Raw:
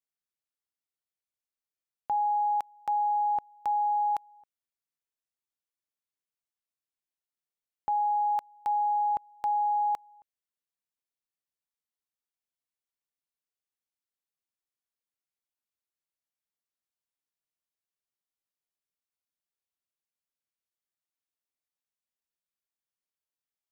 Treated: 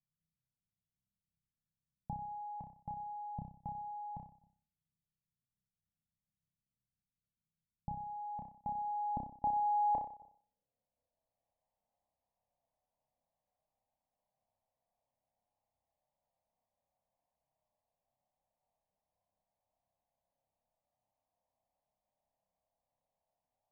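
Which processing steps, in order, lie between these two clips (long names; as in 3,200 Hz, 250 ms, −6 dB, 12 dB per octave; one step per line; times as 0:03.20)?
phaser with its sweep stopped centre 1,400 Hz, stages 6
flutter between parallel walls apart 5.3 metres, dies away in 0.47 s
low-pass filter sweep 170 Hz → 690 Hz, 0:08.07–0:11.62
level +12.5 dB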